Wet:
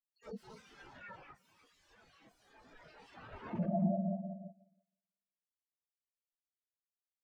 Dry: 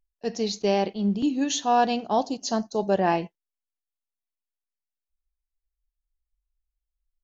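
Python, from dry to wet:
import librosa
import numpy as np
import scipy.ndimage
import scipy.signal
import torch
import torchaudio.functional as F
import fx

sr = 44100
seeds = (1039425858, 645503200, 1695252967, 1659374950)

p1 = fx.spec_delay(x, sr, highs='early', ms=176)
p2 = fx.low_shelf(p1, sr, hz=87.0, db=8.0)
p3 = fx.rev_fdn(p2, sr, rt60_s=3.3, lf_ratio=1.0, hf_ratio=0.85, size_ms=29.0, drr_db=1.5)
p4 = fx.dynamic_eq(p3, sr, hz=650.0, q=1.1, threshold_db=-31.0, ratio=4.0, max_db=-4)
p5 = fx.level_steps(p4, sr, step_db=16)
p6 = p4 + (p5 * librosa.db_to_amplitude(2.0))
p7 = fx.notch(p6, sr, hz=360.0, q=12.0)
p8 = (np.mod(10.0 ** (24.0 / 20.0) * p7 + 1.0, 2.0) - 1.0) / 10.0 ** (24.0 / 20.0)
p9 = p8 + fx.echo_single(p8, sr, ms=309, db=-8.5, dry=0)
p10 = fx.rider(p9, sr, range_db=4, speed_s=2.0)
p11 = fx.spectral_expand(p10, sr, expansion=4.0)
y = p11 * librosa.db_to_amplitude(-3.0)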